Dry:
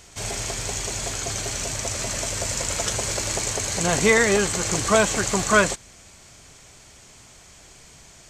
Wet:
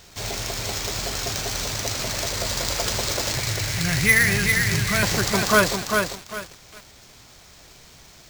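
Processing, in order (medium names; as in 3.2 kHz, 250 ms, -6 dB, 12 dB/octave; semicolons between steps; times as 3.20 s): 3.35–5.03 s: graphic EQ 125/250/500/1000/2000/4000 Hz +11/-7/-12/-12/+10/-10 dB; sample-rate reducer 12 kHz, jitter 0%; bit-crushed delay 398 ms, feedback 35%, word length 6-bit, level -4 dB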